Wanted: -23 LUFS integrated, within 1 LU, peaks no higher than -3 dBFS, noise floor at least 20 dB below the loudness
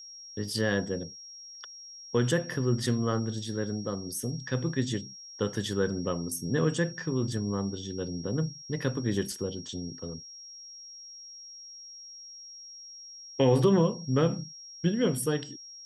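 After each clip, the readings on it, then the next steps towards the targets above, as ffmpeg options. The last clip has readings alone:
steady tone 5.6 kHz; tone level -44 dBFS; loudness -30.0 LUFS; peak level -11.5 dBFS; loudness target -23.0 LUFS
-> -af "bandreject=f=5600:w=30"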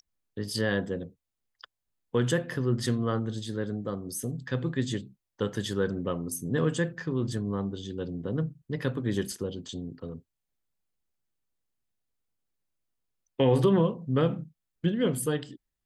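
steady tone not found; loudness -30.0 LUFS; peak level -11.5 dBFS; loudness target -23.0 LUFS
-> -af "volume=2.24"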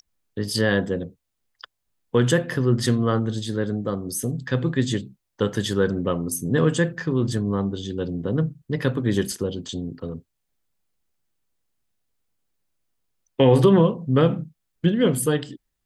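loudness -23.0 LUFS; peak level -4.5 dBFS; noise floor -78 dBFS

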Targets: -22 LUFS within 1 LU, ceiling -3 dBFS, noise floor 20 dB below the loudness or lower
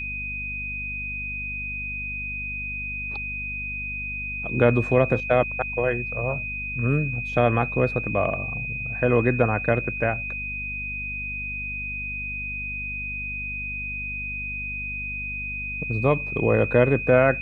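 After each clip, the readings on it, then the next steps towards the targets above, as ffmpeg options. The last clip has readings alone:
hum 50 Hz; highest harmonic 250 Hz; hum level -35 dBFS; steady tone 2.5 kHz; tone level -29 dBFS; loudness -25.0 LUFS; peak level -4.0 dBFS; loudness target -22.0 LUFS
-> -af "bandreject=f=50:t=h:w=4,bandreject=f=100:t=h:w=4,bandreject=f=150:t=h:w=4,bandreject=f=200:t=h:w=4,bandreject=f=250:t=h:w=4"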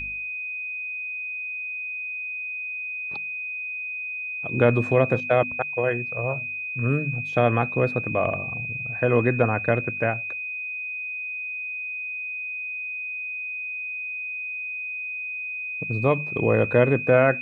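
hum not found; steady tone 2.5 kHz; tone level -29 dBFS
-> -af "bandreject=f=2500:w=30"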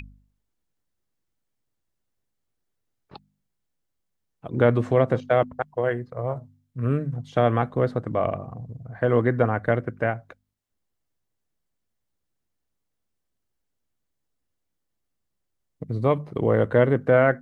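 steady tone not found; loudness -23.5 LUFS; peak level -5.0 dBFS; loudness target -22.0 LUFS
-> -af "volume=1.19"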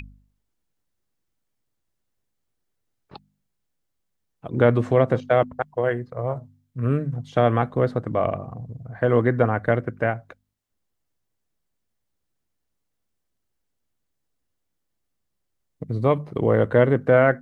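loudness -22.0 LUFS; peak level -3.5 dBFS; noise floor -77 dBFS

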